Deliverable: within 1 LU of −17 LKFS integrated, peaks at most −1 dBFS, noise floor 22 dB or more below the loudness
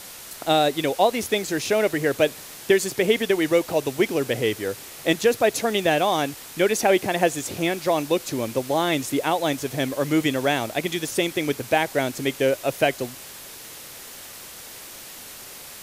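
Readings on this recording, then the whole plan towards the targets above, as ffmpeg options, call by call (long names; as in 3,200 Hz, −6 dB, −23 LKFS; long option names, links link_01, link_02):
background noise floor −41 dBFS; target noise floor −45 dBFS; integrated loudness −23.0 LKFS; sample peak −5.0 dBFS; target loudness −17.0 LKFS
→ -af "afftdn=noise_reduction=6:noise_floor=-41"
-af "volume=6dB,alimiter=limit=-1dB:level=0:latency=1"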